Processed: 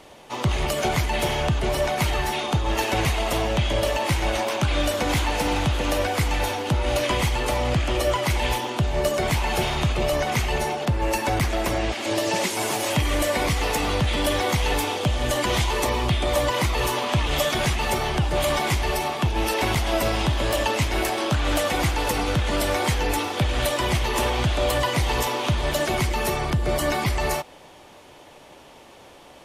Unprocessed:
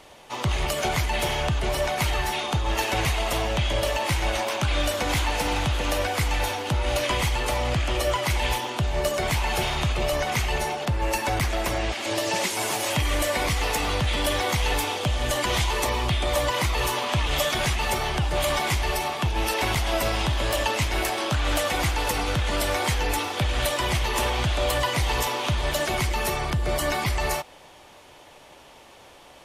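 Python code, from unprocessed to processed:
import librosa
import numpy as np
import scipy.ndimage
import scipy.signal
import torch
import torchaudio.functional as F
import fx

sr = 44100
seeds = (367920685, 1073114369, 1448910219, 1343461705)

y = fx.peak_eq(x, sr, hz=250.0, db=5.0, octaves=2.5)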